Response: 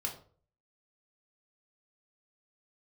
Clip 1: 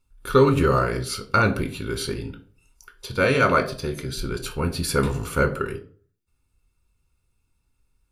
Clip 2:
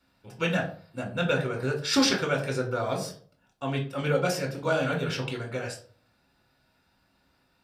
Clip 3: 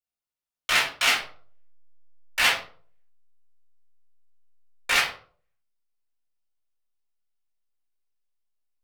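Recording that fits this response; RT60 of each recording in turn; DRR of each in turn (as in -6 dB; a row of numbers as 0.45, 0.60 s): 2; 0.45, 0.45, 0.45 s; 6.5, 0.0, -8.5 dB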